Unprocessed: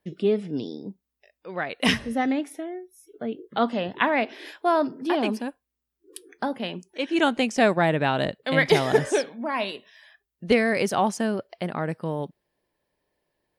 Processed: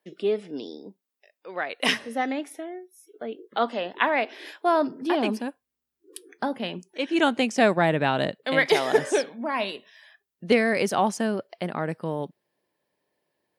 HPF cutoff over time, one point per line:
4.34 s 350 Hz
5.04 s 110 Hz
8.22 s 110 Hz
8.77 s 390 Hz
9.28 s 140 Hz

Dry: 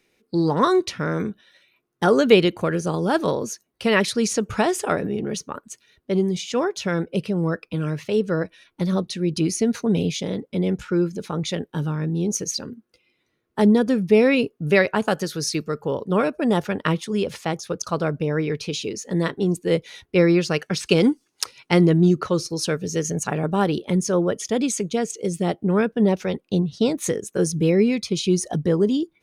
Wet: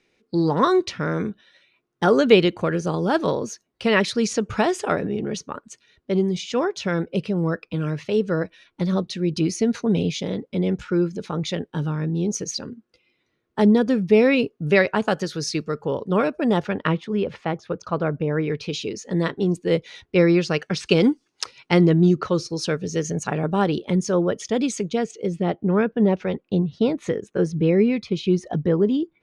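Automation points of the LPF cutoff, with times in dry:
16.44 s 6200 Hz
17.1 s 2400 Hz
18.34 s 2400 Hz
18.78 s 5800 Hz
24.8 s 5800 Hz
25.41 s 2800 Hz

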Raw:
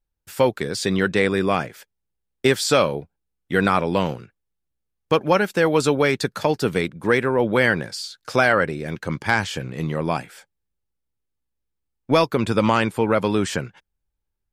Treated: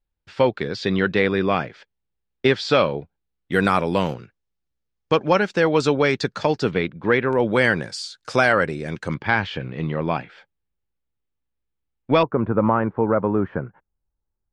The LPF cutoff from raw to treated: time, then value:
LPF 24 dB/oct
4500 Hz
from 3.52 s 12000 Hz
from 4.14 s 6300 Hz
from 6.71 s 3800 Hz
from 7.33 s 8900 Hz
from 9.14 s 3800 Hz
from 12.23 s 1400 Hz

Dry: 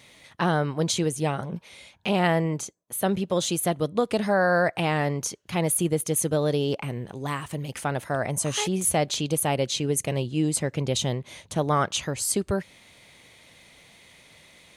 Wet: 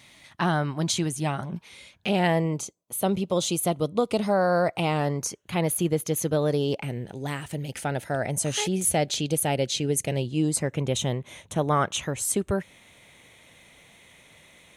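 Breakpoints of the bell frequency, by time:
bell -14 dB 0.26 oct
1.54 s 480 Hz
2.47 s 1700 Hz
4.93 s 1700 Hz
5.74 s 8900 Hz
6.29 s 8900 Hz
6.8 s 1100 Hz
10.23 s 1100 Hz
10.71 s 4700 Hz

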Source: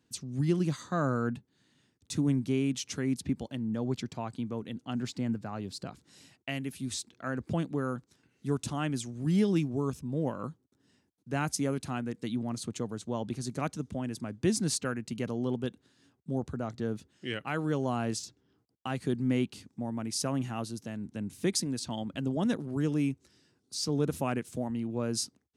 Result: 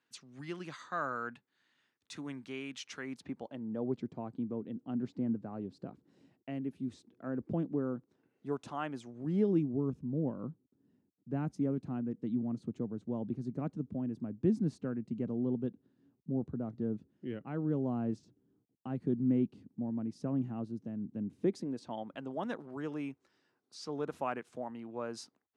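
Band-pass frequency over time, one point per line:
band-pass, Q 0.92
2.9 s 1600 Hz
4.08 s 310 Hz
7.92 s 310 Hz
8.78 s 970 Hz
9.83 s 230 Hz
21.14 s 230 Hz
22.25 s 990 Hz

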